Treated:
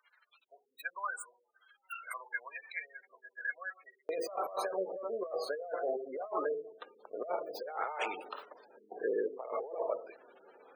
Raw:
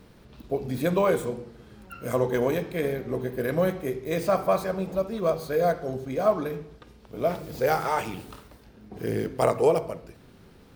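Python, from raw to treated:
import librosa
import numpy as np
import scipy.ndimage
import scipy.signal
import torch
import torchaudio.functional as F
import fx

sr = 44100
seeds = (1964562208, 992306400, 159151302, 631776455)

y = fx.spec_gate(x, sr, threshold_db=-20, keep='strong')
y = fx.highpass(y, sr, hz=fx.steps((0.0, 1500.0), (4.09, 480.0)), slope=24)
y = fx.over_compress(y, sr, threshold_db=-35.0, ratio=-1.0)
y = y * librosa.db_to_amplitude(-2.0)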